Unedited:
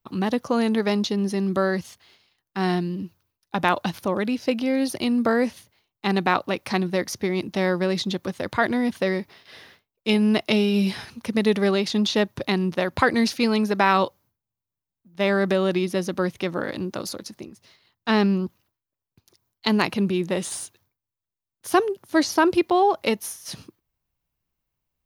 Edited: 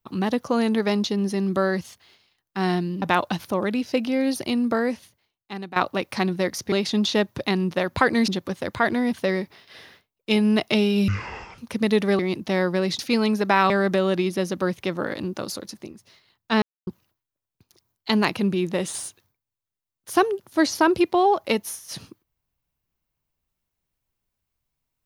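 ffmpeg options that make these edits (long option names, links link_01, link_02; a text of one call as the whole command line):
ffmpeg -i in.wav -filter_complex "[0:a]asplit=12[link_01][link_02][link_03][link_04][link_05][link_06][link_07][link_08][link_09][link_10][link_11][link_12];[link_01]atrim=end=3.022[link_13];[link_02]atrim=start=3.558:end=6.3,asetpts=PTS-STARTPTS,afade=type=out:start_time=1.412:duration=1.33:silence=0.158489[link_14];[link_03]atrim=start=6.3:end=7.262,asetpts=PTS-STARTPTS,afade=type=in:duration=0.004:curve=hsin:silence=0.158489[link_15];[link_04]atrim=start=11.728:end=13.292[link_16];[link_05]atrim=start=8.058:end=10.864[link_17];[link_06]atrim=start=10.86:end=11.12,asetpts=PTS-STARTPTS,asetrate=22932,aresample=44100[link_18];[link_07]atrim=start=11.116:end=11.732[link_19];[link_08]atrim=start=7.258:end=8.062[link_20];[link_09]atrim=start=13.288:end=14.002[link_21];[link_10]atrim=start=15.268:end=18.19,asetpts=PTS-STARTPTS,afade=type=out:start_time=2.918:duration=0.004:curve=hsin[link_22];[link_11]atrim=start=18.19:end=18.44,asetpts=PTS-STARTPTS,volume=0[link_23];[link_12]atrim=start=18.44,asetpts=PTS-STARTPTS,afade=type=in:duration=0.004:curve=hsin[link_24];[link_14][link_15]concat=n=2:v=0:a=1[link_25];[link_13][link_25]acrossfade=duration=0.004:curve1=hsin:curve2=hsin[link_26];[link_26][link_16]acrossfade=duration=0.004:curve1=hsin:curve2=hsin[link_27];[link_27][link_17]acrossfade=duration=0.004:curve1=hsin:curve2=hsin[link_28];[link_28][link_18]acrossfade=duration=0.004:curve1=hsin:curve2=hsin[link_29];[link_29][link_19]acrossfade=duration=0.004:curve1=hsin:curve2=hsin[link_30];[link_30][link_20]acrossfade=duration=0.004:curve1=hsin:curve2=hsin[link_31];[link_31][link_21]acrossfade=duration=0.004:curve1=hsin:curve2=hsin[link_32];[link_22][link_23][link_24]concat=n=3:v=0:a=1[link_33];[link_32][link_33]acrossfade=duration=0.004:curve1=hsin:curve2=hsin" out.wav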